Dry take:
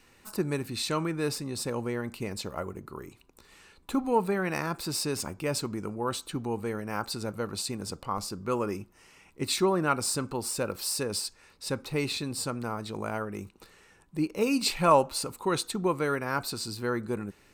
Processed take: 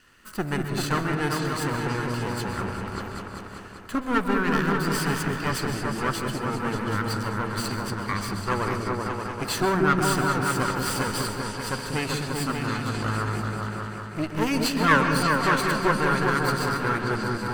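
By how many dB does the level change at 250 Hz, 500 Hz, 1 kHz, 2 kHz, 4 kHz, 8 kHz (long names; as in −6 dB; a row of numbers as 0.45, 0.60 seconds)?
+5.5, +2.0, +6.5, +11.0, +2.0, 0.0 decibels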